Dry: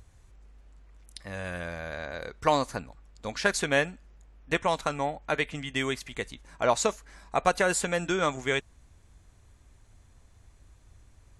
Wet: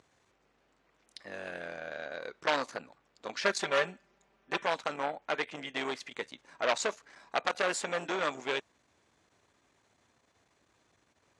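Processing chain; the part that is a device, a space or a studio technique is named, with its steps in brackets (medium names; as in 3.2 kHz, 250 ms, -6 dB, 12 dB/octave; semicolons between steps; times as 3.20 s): public-address speaker with an overloaded transformer (transformer saturation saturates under 3.3 kHz; band-pass 290–5800 Hz); 3.43–4.65 s: comb 5.1 ms, depth 75%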